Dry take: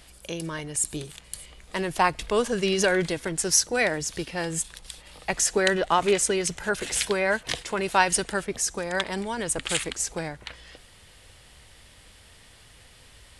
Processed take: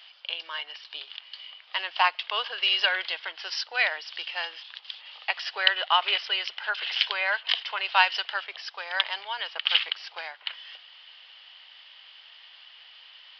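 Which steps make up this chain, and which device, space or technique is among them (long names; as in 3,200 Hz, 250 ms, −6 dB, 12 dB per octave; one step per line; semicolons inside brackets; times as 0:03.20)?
musical greeting card (downsampling to 11,025 Hz; high-pass filter 790 Hz 24 dB per octave; parametric band 3,000 Hz +12 dB 0.34 octaves)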